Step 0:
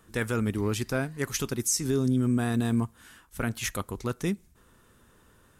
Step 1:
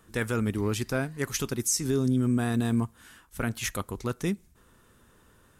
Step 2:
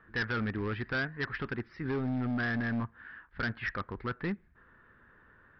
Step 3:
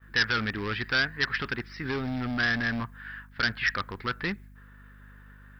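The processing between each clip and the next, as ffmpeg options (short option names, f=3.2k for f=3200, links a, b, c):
-af anull
-af "lowpass=f=1.7k:t=q:w=4.4,aresample=11025,asoftclip=type=hard:threshold=-23.5dB,aresample=44100,volume=-4.5dB"
-af "aeval=exprs='val(0)+0.00447*(sin(2*PI*50*n/s)+sin(2*PI*2*50*n/s)/2+sin(2*PI*3*50*n/s)/3+sin(2*PI*4*50*n/s)/4+sin(2*PI*5*50*n/s)/5)':c=same,agate=range=-33dB:threshold=-44dB:ratio=3:detection=peak,crystalizer=i=9:c=0"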